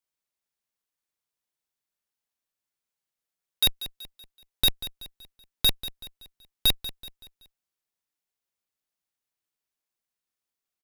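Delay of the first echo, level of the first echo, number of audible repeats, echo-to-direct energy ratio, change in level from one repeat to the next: 0.189 s, -14.5 dB, 3, -13.5 dB, -7.5 dB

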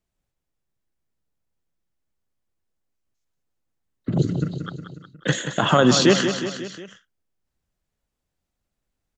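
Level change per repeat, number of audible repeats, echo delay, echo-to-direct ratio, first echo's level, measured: -4.5 dB, 4, 0.181 s, -7.0 dB, -8.5 dB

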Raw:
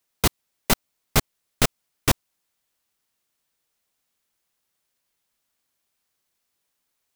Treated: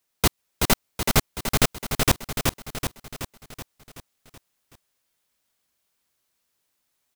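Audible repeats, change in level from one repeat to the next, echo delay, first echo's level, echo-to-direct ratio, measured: 6, -5.0 dB, 0.377 s, -4.0 dB, -2.5 dB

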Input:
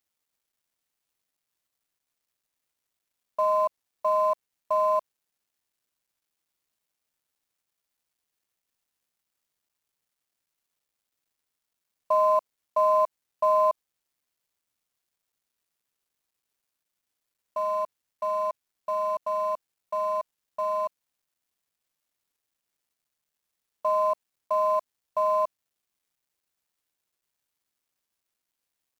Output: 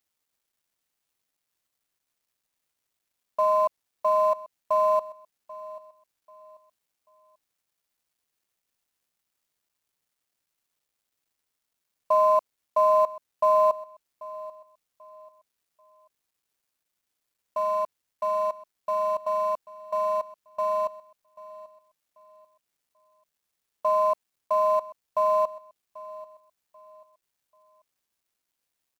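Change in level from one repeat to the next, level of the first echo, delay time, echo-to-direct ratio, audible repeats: -10.5 dB, -18.5 dB, 0.788 s, -18.0 dB, 2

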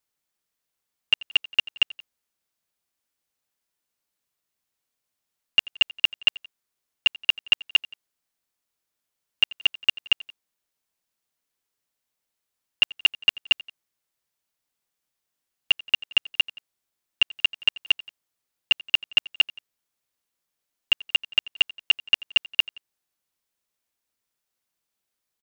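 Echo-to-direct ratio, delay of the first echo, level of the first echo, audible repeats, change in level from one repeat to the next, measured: -19.5 dB, 87 ms, -20.5 dB, 2, -5.0 dB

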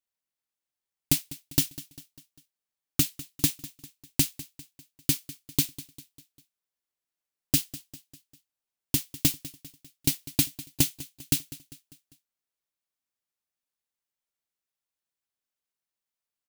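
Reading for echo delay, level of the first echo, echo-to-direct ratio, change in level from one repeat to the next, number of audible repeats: 0.199 s, -17.5 dB, -16.5 dB, -6.0 dB, 3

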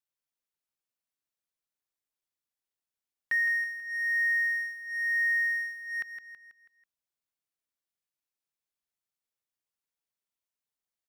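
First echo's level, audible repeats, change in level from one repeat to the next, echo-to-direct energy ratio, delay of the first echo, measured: -9.0 dB, 5, -6.5 dB, -8.0 dB, 0.163 s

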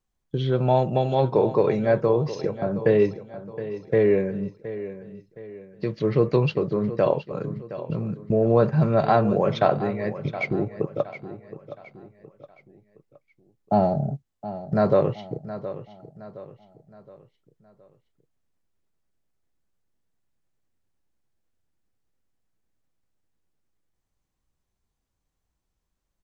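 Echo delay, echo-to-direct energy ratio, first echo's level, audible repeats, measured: 0.718 s, -12.5 dB, -13.5 dB, 3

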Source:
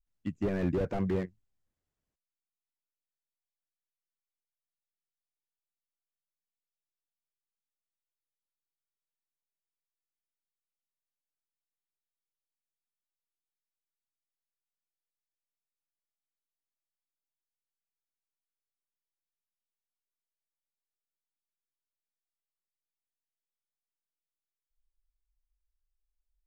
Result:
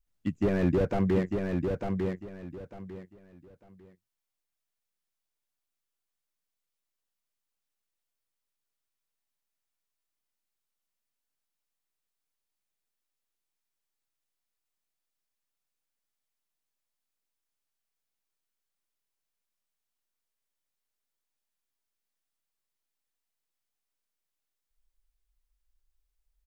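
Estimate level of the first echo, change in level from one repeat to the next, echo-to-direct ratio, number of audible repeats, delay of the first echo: -4.5 dB, -12.5 dB, -4.0 dB, 3, 0.899 s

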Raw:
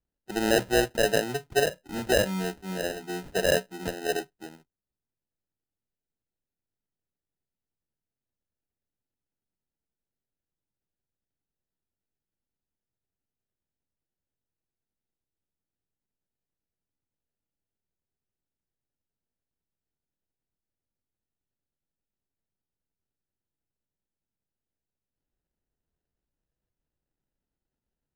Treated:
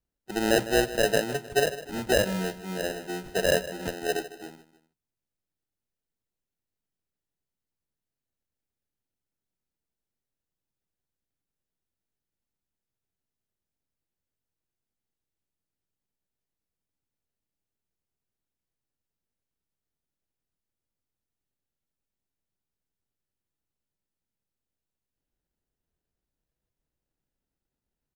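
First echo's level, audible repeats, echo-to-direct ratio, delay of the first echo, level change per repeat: -15.0 dB, 2, -14.0 dB, 0.154 s, -7.0 dB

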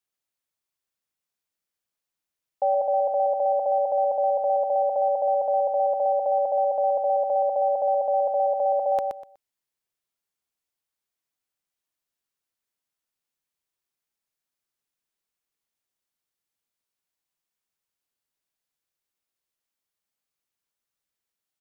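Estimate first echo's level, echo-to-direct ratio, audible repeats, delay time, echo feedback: -5.5 dB, -5.5 dB, 3, 0.123 s, 22%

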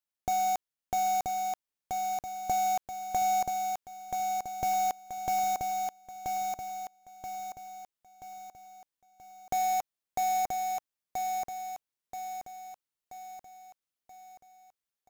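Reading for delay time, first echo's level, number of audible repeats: 0.98 s, -4.0 dB, 5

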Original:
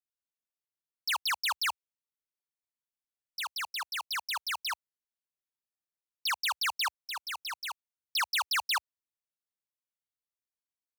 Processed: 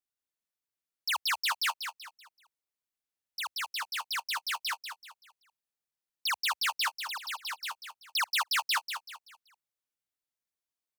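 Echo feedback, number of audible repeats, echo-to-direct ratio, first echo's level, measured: 34%, 3, -7.5 dB, -8.0 dB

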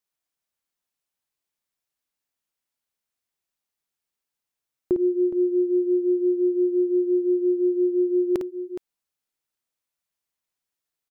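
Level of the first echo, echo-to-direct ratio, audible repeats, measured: -7.0 dB, -5.5 dB, 2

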